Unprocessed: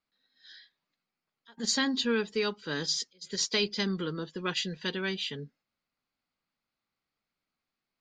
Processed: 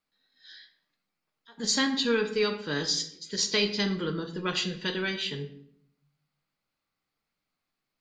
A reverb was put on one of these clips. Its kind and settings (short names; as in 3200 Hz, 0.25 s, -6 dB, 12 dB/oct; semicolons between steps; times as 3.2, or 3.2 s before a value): shoebox room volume 130 m³, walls mixed, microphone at 0.48 m; gain +1.5 dB